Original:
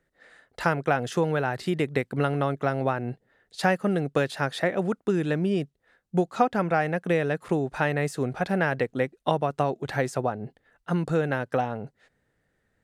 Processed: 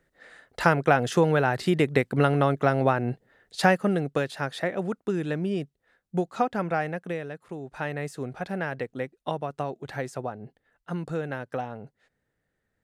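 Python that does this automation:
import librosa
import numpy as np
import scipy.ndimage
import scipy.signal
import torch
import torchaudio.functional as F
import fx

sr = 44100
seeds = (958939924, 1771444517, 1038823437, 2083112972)

y = fx.gain(x, sr, db=fx.line((3.6, 3.5), (4.26, -3.0), (6.82, -3.0), (7.48, -13.5), (7.86, -6.0)))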